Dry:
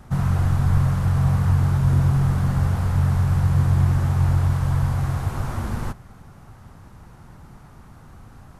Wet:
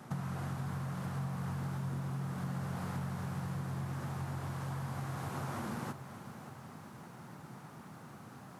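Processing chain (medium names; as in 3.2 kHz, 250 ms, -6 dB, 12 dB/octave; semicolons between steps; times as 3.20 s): high-pass 140 Hz 24 dB/octave; compression 6:1, threshold -34 dBFS, peak gain reduction 13 dB; bit-crushed delay 578 ms, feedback 55%, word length 10-bit, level -12.5 dB; trim -2 dB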